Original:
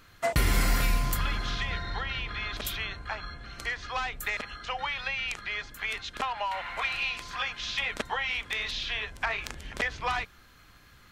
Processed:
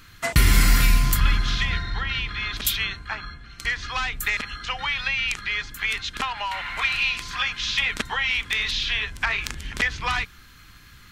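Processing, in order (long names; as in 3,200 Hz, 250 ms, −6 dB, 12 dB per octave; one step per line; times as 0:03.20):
parametric band 600 Hz −12 dB 1.4 octaves
0:01.20–0:03.65: multiband upward and downward expander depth 70%
level +8.5 dB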